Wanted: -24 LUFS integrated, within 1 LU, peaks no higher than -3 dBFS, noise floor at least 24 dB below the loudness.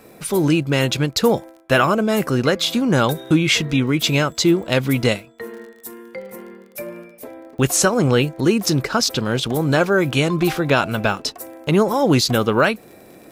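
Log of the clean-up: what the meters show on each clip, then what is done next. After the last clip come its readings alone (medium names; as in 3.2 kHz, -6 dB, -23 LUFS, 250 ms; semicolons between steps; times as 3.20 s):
tick rate 37 per s; loudness -18.5 LUFS; peak level -3.5 dBFS; loudness target -24.0 LUFS
-> de-click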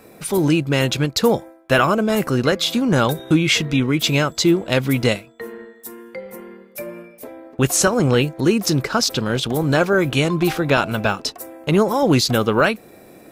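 tick rate 0.30 per s; loudness -18.5 LUFS; peak level -3.5 dBFS; loudness target -24.0 LUFS
-> trim -5.5 dB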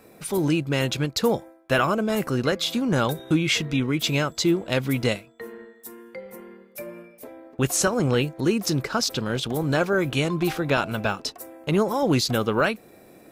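loudness -24.0 LUFS; peak level -9.0 dBFS; noise floor -52 dBFS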